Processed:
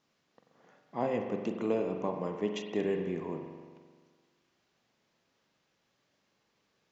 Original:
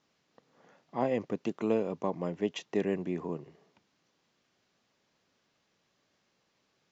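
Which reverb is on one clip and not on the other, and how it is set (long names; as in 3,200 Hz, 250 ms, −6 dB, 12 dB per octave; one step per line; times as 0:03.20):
spring reverb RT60 1.6 s, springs 43 ms, chirp 55 ms, DRR 4 dB
level −2 dB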